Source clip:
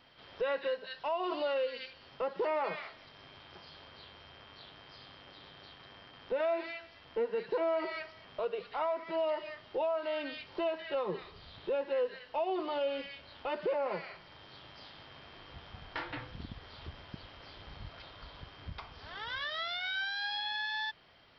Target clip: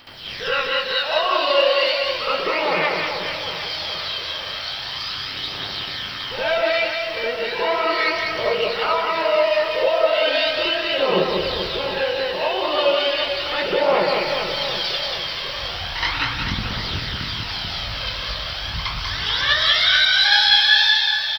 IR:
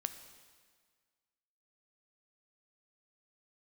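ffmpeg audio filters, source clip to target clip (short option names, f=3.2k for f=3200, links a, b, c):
-filter_complex "[0:a]crystalizer=i=8:c=0,asplit=2[a][b];[b]acompressor=threshold=-40dB:ratio=6,volume=1dB[c];[a][c]amix=inputs=2:normalize=0,flanger=delay=18.5:depth=7.8:speed=2.3,asettb=1/sr,asplit=3[d][e][f];[d]atrim=end=14.004[g];[e]atrim=start=14:end=14.94,asetpts=PTS-STARTPTS,afade=t=in:d=0.004:c=qsin,afade=t=out:st=0.936:d=0.004:c=qsin,aecho=1:1:6:0.99,atrim=end_sample=41454[h];[f]atrim=start=14.936[i];[g][h]acrossfade=d=0.004:c1=hsin:c2=qsin[j];[j][i]acrossfade=d=0.004:c1=qsin:c2=hsin,aphaser=in_gain=1:out_gain=1:delay=2:decay=0.61:speed=0.36:type=triangular,aecho=1:1:190|437|758.1|1176|1718:0.631|0.398|0.251|0.158|0.1,asplit=2[k][l];[1:a]atrim=start_sample=2205,adelay=70[m];[l][m]afir=irnorm=-1:irlink=0,volume=8.5dB[n];[k][n]amix=inputs=2:normalize=0"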